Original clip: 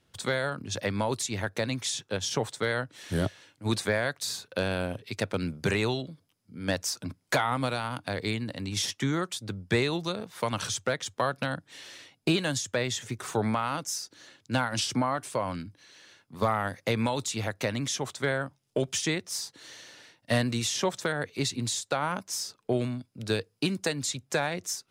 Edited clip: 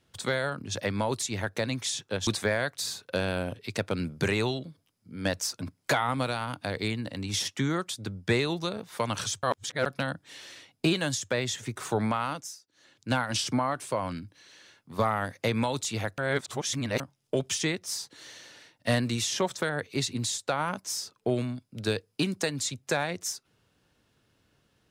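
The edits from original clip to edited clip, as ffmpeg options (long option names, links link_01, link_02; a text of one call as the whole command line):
ffmpeg -i in.wav -filter_complex "[0:a]asplit=8[link_01][link_02][link_03][link_04][link_05][link_06][link_07][link_08];[link_01]atrim=end=2.272[link_09];[link_02]atrim=start=3.698:end=10.862[link_10];[link_03]atrim=start=10.858:end=11.292,asetpts=PTS-STARTPTS,areverse[link_11];[link_04]atrim=start=11.288:end=14.04,asetpts=PTS-STARTPTS,afade=type=out:start_time=2.392:duration=0.36:silence=0.1[link_12];[link_05]atrim=start=14.04:end=14.15,asetpts=PTS-STARTPTS,volume=-20dB[link_13];[link_06]atrim=start=14.15:end=17.612,asetpts=PTS-STARTPTS,afade=type=in:duration=0.36:silence=0.1[link_14];[link_07]atrim=start=17.608:end=18.432,asetpts=PTS-STARTPTS,areverse[link_15];[link_08]atrim=start=18.428[link_16];[link_09][link_10]acrossfade=duration=0.004:curve1=hsin:curve2=hsin[link_17];[link_17][link_11]acrossfade=duration=0.004:curve1=hsin:curve2=hsin[link_18];[link_12][link_13][link_14]concat=n=3:v=0:a=1[link_19];[link_18][link_19]acrossfade=duration=0.004:curve1=hsin:curve2=hsin[link_20];[link_20][link_15]acrossfade=duration=0.004:curve1=hsin:curve2=hsin[link_21];[link_21][link_16]acrossfade=duration=0.004:curve1=hsin:curve2=hsin" out.wav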